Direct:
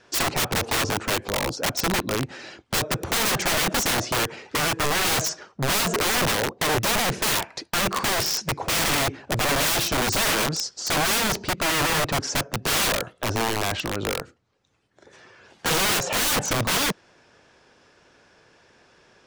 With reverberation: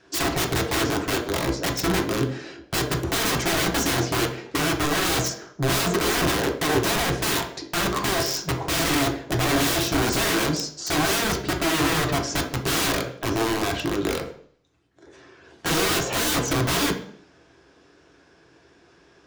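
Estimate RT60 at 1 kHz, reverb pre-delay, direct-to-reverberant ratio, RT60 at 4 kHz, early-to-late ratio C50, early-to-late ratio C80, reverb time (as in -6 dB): 0.55 s, 3 ms, 1.0 dB, 0.55 s, 8.0 dB, 12.5 dB, 0.55 s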